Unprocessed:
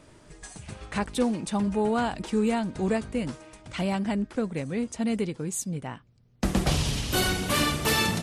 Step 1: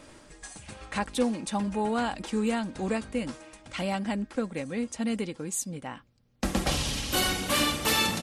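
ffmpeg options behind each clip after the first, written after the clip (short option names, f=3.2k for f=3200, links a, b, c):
-af "lowshelf=f=360:g=-5.5,aecho=1:1:3.7:0.34,areverse,acompressor=mode=upward:threshold=-43dB:ratio=2.5,areverse"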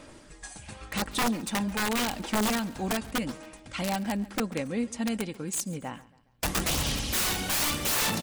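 -af "aeval=exprs='(mod(11.9*val(0)+1,2)-1)/11.9':c=same,aphaser=in_gain=1:out_gain=1:delay=1.3:decay=0.23:speed=0.87:type=sinusoidal,aecho=1:1:138|276|414:0.1|0.043|0.0185"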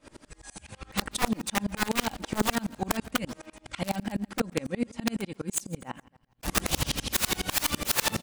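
-af "aeval=exprs='val(0)*pow(10,-30*if(lt(mod(-12*n/s,1),2*abs(-12)/1000),1-mod(-12*n/s,1)/(2*abs(-12)/1000),(mod(-12*n/s,1)-2*abs(-12)/1000)/(1-2*abs(-12)/1000))/20)':c=same,volume=7.5dB"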